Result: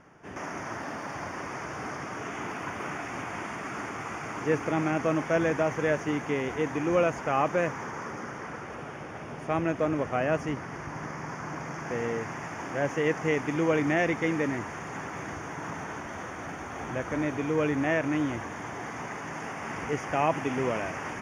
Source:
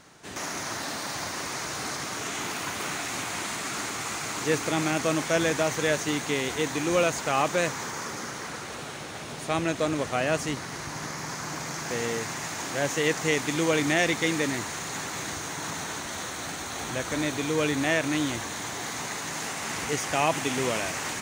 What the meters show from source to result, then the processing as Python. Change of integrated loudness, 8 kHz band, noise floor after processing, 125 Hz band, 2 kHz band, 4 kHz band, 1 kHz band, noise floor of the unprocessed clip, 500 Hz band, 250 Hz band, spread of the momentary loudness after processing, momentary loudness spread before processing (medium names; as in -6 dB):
-2.5 dB, -15.5 dB, -40 dBFS, 0.0 dB, -3.5 dB, -13.5 dB, -1.0 dB, -37 dBFS, -0.5 dB, 0.0 dB, 11 LU, 9 LU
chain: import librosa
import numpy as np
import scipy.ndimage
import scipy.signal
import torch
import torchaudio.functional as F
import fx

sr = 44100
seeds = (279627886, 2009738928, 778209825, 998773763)

y = scipy.signal.lfilter(np.full(11, 1.0 / 11), 1.0, x)